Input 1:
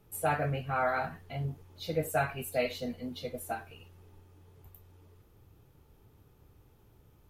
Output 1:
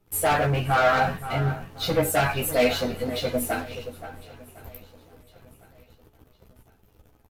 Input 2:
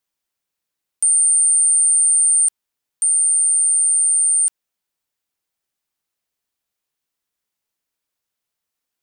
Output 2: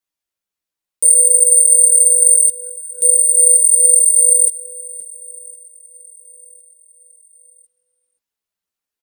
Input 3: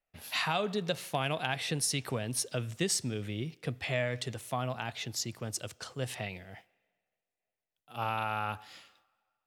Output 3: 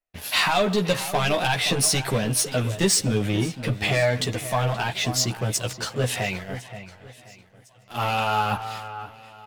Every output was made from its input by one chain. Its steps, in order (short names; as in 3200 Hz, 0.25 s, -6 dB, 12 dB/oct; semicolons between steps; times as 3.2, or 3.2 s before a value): sample leveller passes 3; outdoor echo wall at 90 m, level -12 dB; chorus voices 6, 0.24 Hz, delay 13 ms, depth 3.6 ms; on a send: feedback echo 1.056 s, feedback 42%, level -22.5 dB; on the sum: gain +5 dB